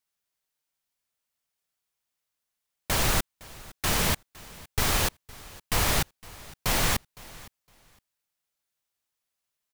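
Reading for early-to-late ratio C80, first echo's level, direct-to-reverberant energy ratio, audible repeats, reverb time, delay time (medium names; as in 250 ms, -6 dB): no reverb, -21.0 dB, no reverb, 1, no reverb, 511 ms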